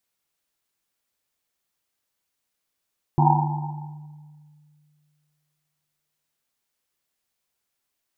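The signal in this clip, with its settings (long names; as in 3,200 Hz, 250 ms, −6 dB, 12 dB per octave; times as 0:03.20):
drum after Risset length 3.39 s, pitch 150 Hz, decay 2.41 s, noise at 860 Hz, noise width 180 Hz, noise 50%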